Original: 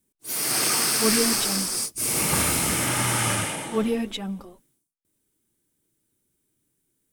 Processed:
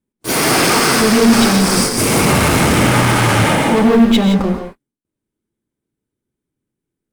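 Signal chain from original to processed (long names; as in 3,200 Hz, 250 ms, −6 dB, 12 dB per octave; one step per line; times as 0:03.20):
low-pass filter 1,300 Hz 6 dB per octave
in parallel at −0.5 dB: speech leveller within 5 dB 0.5 s
on the sum: leveller curve on the samples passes 5
downward compressor, threshold −12 dBFS, peak gain reduction 3.5 dB
reverb whose tail is shaped and stops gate 190 ms rising, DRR 4.5 dB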